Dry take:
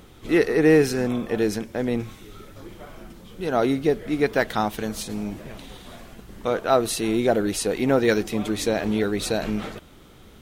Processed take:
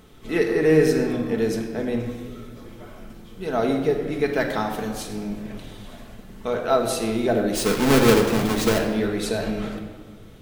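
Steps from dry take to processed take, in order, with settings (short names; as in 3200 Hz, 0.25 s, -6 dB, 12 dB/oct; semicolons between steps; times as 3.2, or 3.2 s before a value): 7.55–8.79 half-waves squared off; shoebox room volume 1700 m³, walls mixed, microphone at 1.5 m; gain -3.5 dB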